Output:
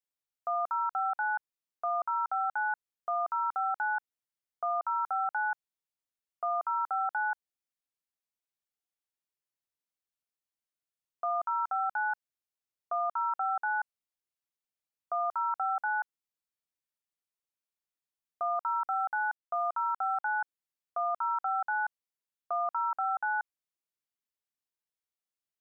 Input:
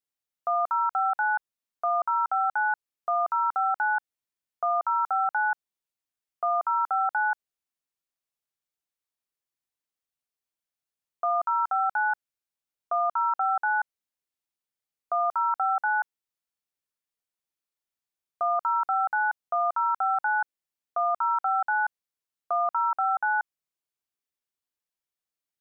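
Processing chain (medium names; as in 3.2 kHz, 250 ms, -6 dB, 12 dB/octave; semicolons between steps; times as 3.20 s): 18.55–20.28 s: small samples zeroed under -53.5 dBFS; trim -5.5 dB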